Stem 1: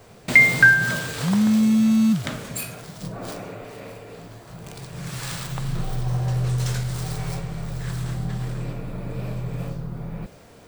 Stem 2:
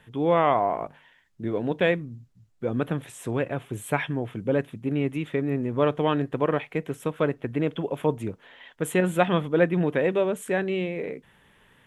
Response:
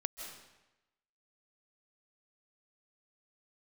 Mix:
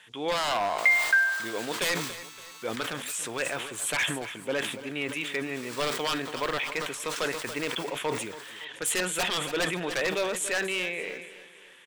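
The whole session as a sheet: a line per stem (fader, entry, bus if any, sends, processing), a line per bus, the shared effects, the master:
−9.0 dB, 0.50 s, muted 0:08.65–0:09.92, no send, no echo send, Butterworth high-pass 880 Hz 72 dB per octave
0.0 dB, 0.00 s, no send, echo send −15 dB, meter weighting curve ITU-R 468; wave folding −20.5 dBFS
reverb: not used
echo: repeating echo 284 ms, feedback 44%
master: level that may fall only so fast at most 57 dB per second

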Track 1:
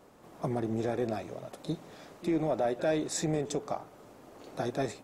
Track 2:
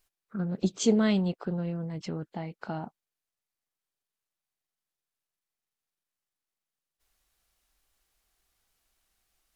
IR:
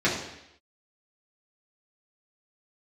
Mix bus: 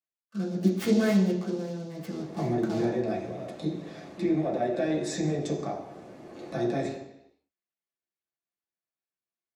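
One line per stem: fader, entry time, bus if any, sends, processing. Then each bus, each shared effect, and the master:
−4.5 dB, 1.95 s, send −6.5 dB, low-pass filter 10,000 Hz 12 dB per octave; parametric band 1,200 Hz −2.5 dB; downward compressor 1.5 to 1, threshold −38 dBFS, peak gain reduction 5 dB
−12.5 dB, 0.00 s, send −3 dB, noise gate with hold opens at −50 dBFS; high-pass filter 180 Hz; short delay modulated by noise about 4,700 Hz, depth 0.062 ms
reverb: on, RT60 0.80 s, pre-delay 3 ms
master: no processing

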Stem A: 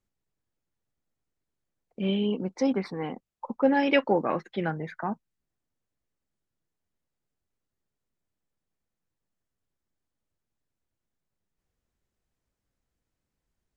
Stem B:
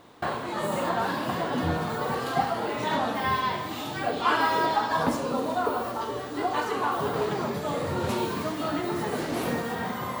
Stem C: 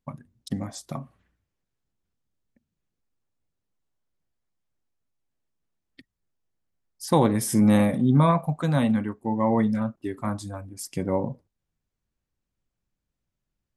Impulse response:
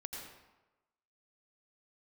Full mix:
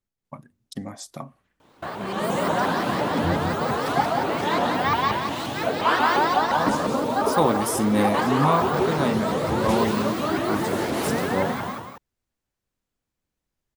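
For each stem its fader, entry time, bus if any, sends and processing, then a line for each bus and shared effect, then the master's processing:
−7.0 dB, 0.00 s, no send, echo send −4 dB, compressor whose output falls as the input rises −27 dBFS, ratio −0.5
−4.5 dB, 1.60 s, no send, echo send −5.5 dB, automatic gain control gain up to 8 dB; pitch modulation by a square or saw wave saw up 5.7 Hz, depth 250 cents
+1.0 dB, 0.25 s, no send, no echo send, low-shelf EQ 170 Hz −11.5 dB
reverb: not used
echo: single-tap delay 181 ms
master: no processing

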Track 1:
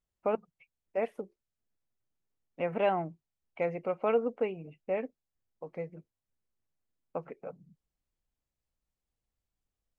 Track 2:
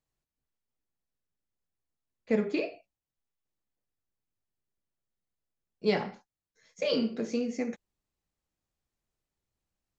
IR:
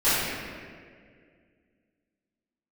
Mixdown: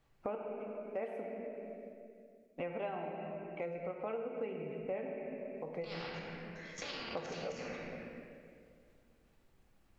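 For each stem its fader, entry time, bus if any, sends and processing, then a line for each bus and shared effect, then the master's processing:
+3.0 dB, 0.00 s, send −19.5 dB, speech leveller within 5 dB
+0.5 dB, 0.00 s, muted 0:01.93–0:03.67, send −16 dB, low-pass filter 2,900 Hz 12 dB per octave; output level in coarse steps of 20 dB; every bin compressed towards the loudest bin 4 to 1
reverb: on, RT60 2.0 s, pre-delay 3 ms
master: downward compressor 3 to 1, threshold −41 dBFS, peak gain reduction 15.5 dB

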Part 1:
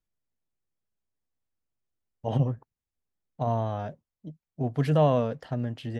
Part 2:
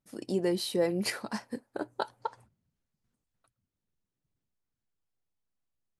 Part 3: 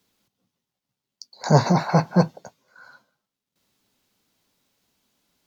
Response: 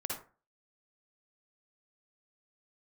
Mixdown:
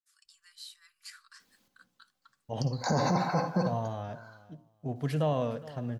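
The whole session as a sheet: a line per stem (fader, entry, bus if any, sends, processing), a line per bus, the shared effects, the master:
−7.5 dB, 0.25 s, send −13 dB, echo send −18.5 dB, high-shelf EQ 3,900 Hz +8.5 dB
−10.0 dB, 0.00 s, no send, no echo send, parametric band 7,500 Hz +8.5 dB 0.26 octaves; brickwall limiter −22 dBFS, peak gain reduction 7.5 dB; Chebyshev high-pass with heavy ripple 1,100 Hz, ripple 6 dB
0:02.72 −3.5 dB → 0:03.39 −10 dB, 1.40 s, send −5.5 dB, no echo send, comb filter 3.9 ms, depth 31%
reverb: on, RT60 0.35 s, pre-delay 47 ms
echo: repeating echo 413 ms, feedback 19%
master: brickwall limiter −18.5 dBFS, peak gain reduction 11 dB

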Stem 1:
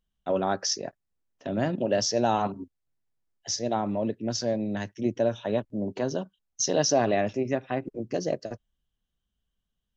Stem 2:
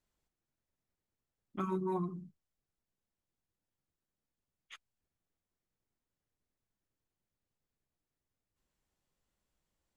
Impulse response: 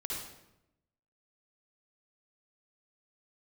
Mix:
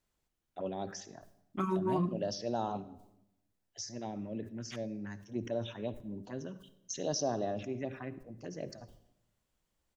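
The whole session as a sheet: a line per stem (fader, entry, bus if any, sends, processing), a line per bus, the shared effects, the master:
−10.5 dB, 0.30 s, send −15 dB, phaser swept by the level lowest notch 160 Hz, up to 2,300 Hz, full sweep at −20 dBFS; level that may fall only so fast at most 120 dB per second
+3.0 dB, 0.00 s, no send, no processing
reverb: on, RT60 0.85 s, pre-delay 50 ms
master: no processing

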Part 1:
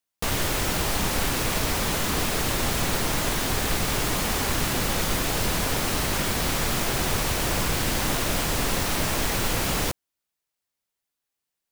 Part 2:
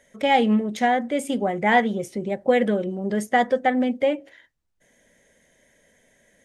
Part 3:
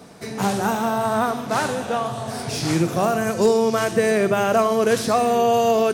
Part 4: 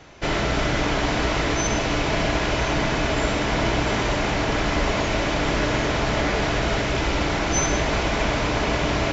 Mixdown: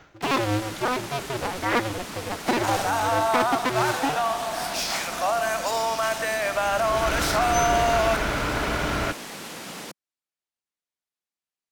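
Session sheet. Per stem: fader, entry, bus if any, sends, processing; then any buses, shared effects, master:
−10.0 dB, 0.00 s, no send, Chebyshev high-pass filter 180 Hz, order 3
−5.5 dB, 0.00 s, no send, sub-harmonics by changed cycles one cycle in 2, inverted; low-pass filter 6,100 Hz; pitch vibrato 1.5 Hz 46 cents
+2.5 dB, 2.25 s, no send, Butterworth high-pass 610 Hz 48 dB per octave; brickwall limiter −18.5 dBFS, peak gain reduction 8.5 dB
−4.5 dB, 0.00 s, no send, parametric band 1,400 Hz +10 dB 0.3 octaves; automatic ducking −20 dB, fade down 0.25 s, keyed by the second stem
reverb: not used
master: linearly interpolated sample-rate reduction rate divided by 2×

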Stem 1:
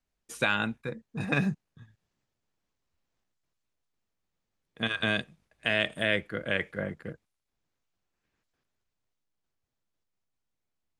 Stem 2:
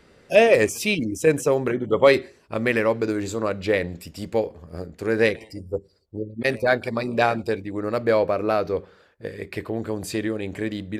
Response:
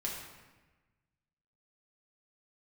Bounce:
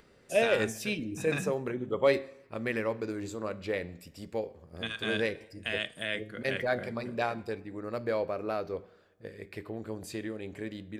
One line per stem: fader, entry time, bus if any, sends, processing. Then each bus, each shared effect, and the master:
−5.0 dB, 0.00 s, no send, high-shelf EQ 3,000 Hz +9.5 dB
−7.0 dB, 0.00 s, send −20.5 dB, upward compression, threshold −44 dBFS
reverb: on, RT60 1.2 s, pre-delay 5 ms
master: flanger 0.47 Hz, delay 7.1 ms, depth 2.8 ms, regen +90%

